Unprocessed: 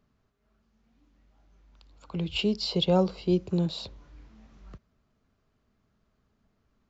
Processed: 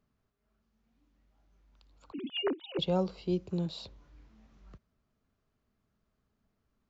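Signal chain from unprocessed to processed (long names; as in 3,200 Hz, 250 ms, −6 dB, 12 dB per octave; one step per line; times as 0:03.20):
0:02.12–0:02.79: three sine waves on the formant tracks
level −6.5 dB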